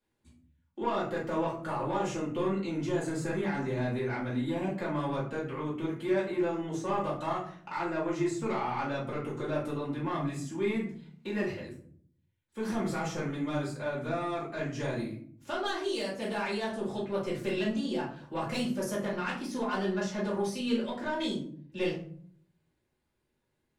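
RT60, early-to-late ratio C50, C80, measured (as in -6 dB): 0.55 s, 6.0 dB, 10.5 dB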